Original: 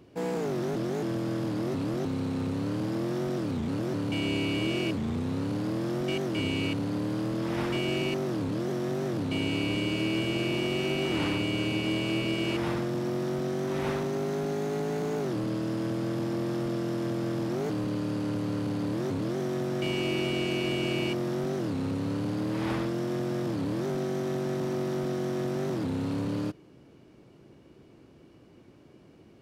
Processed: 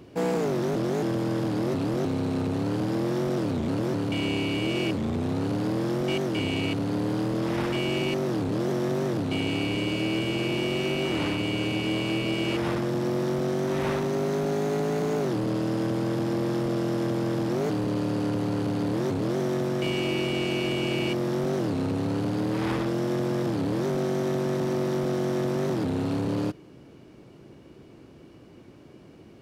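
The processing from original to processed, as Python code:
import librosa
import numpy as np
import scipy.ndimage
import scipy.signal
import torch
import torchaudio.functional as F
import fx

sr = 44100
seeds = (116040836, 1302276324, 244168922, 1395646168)

y = fx.rider(x, sr, range_db=10, speed_s=0.5)
y = fx.transformer_sat(y, sr, knee_hz=420.0)
y = y * 10.0 ** (4.5 / 20.0)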